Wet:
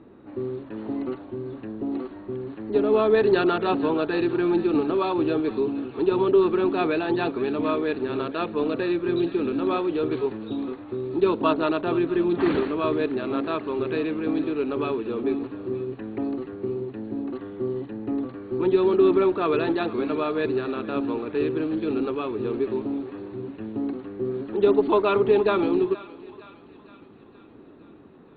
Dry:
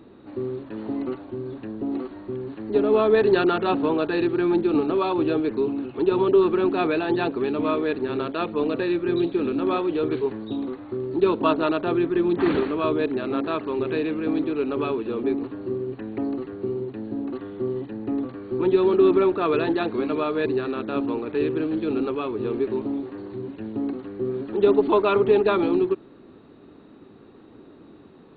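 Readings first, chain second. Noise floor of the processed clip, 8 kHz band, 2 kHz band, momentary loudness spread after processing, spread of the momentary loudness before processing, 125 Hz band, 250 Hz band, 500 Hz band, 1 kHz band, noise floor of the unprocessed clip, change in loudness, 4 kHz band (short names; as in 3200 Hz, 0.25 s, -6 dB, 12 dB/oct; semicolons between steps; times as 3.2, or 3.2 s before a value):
-49 dBFS, n/a, -1.0 dB, 12 LU, 12 LU, -1.0 dB, -1.0 dB, -1.0 dB, -1.0 dB, -49 dBFS, -1.0 dB, -1.0 dB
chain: low-pass opened by the level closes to 2400 Hz, open at -18 dBFS; thinning echo 0.466 s, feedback 61%, high-pass 700 Hz, level -16 dB; gain -1 dB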